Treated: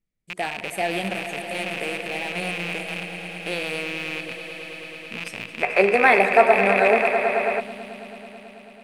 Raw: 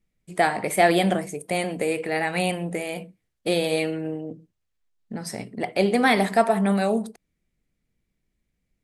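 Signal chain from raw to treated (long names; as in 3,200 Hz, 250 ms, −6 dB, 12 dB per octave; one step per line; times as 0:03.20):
loose part that buzzes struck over −38 dBFS, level −11 dBFS
echo that builds up and dies away 109 ms, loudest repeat 5, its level −13.5 dB
gain on a spectral selection 0:05.62–0:07.60, 360–2,700 Hz +12 dB
level −8 dB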